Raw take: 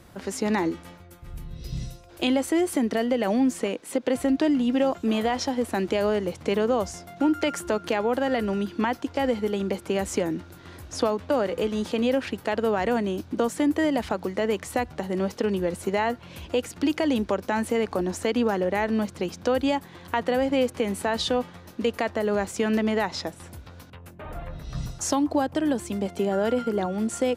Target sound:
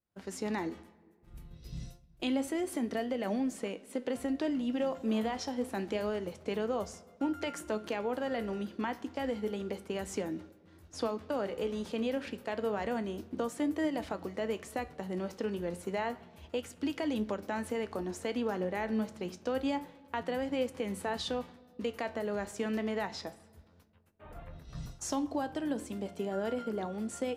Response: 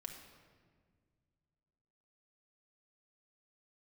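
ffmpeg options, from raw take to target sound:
-filter_complex "[0:a]flanger=delay=9.2:depth=9.2:regen=73:speed=0.29:shape=triangular,agate=range=0.0224:threshold=0.0126:ratio=3:detection=peak,asplit=2[s0][s1];[1:a]atrim=start_sample=2205[s2];[s1][s2]afir=irnorm=-1:irlink=0,volume=0.376[s3];[s0][s3]amix=inputs=2:normalize=0,volume=0.447"

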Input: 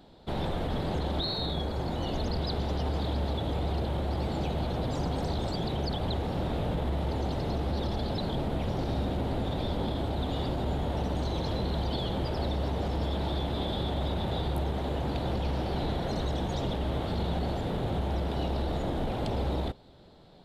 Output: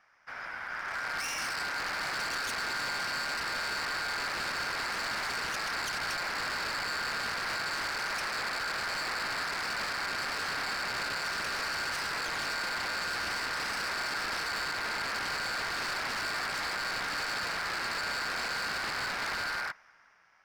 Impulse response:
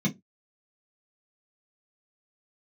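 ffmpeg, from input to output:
-af "dynaudnorm=f=200:g=11:m=3.98,aeval=exprs='val(0)*sin(2*PI*1500*n/s)':c=same,aeval=exprs='0.1*(abs(mod(val(0)/0.1+3,4)-2)-1)':c=same,volume=0.398"

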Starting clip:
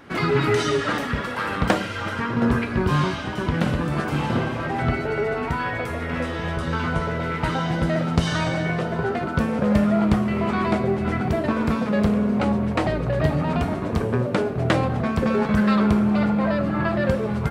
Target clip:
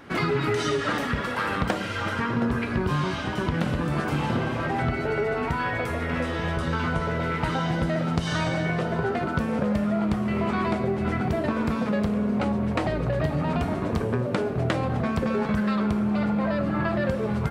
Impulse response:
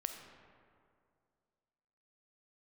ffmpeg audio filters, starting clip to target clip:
-af "acompressor=threshold=0.0891:ratio=6"

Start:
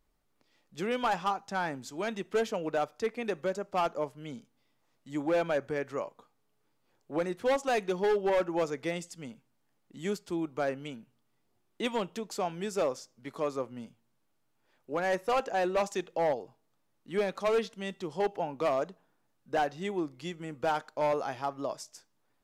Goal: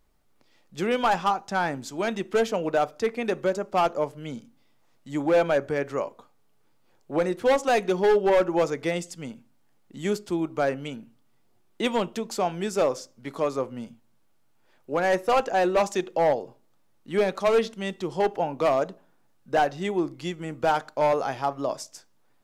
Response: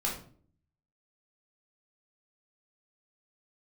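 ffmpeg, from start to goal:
-filter_complex "[0:a]asplit=2[s0][s1];[1:a]atrim=start_sample=2205,asetrate=88200,aresample=44100,lowpass=1500[s2];[s1][s2]afir=irnorm=-1:irlink=0,volume=0.178[s3];[s0][s3]amix=inputs=2:normalize=0,volume=2"

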